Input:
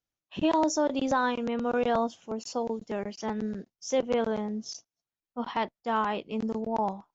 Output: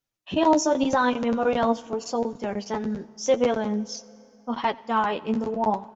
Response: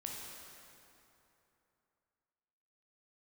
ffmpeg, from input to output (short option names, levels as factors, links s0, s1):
-filter_complex "[0:a]atempo=1.2,flanger=delay=7.1:depth=6.5:regen=32:speed=0.85:shape=triangular,asplit=2[s0][s1];[1:a]atrim=start_sample=2205,adelay=89[s2];[s1][s2]afir=irnorm=-1:irlink=0,volume=0.112[s3];[s0][s3]amix=inputs=2:normalize=0,volume=2.66"